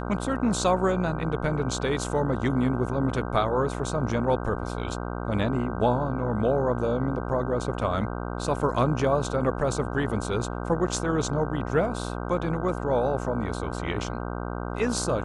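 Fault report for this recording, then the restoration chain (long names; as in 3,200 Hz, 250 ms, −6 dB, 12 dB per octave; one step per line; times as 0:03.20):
mains buzz 60 Hz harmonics 26 −32 dBFS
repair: hum removal 60 Hz, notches 26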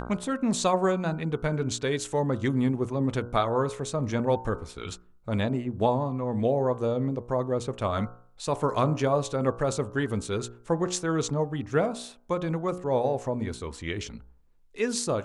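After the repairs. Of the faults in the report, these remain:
none of them is left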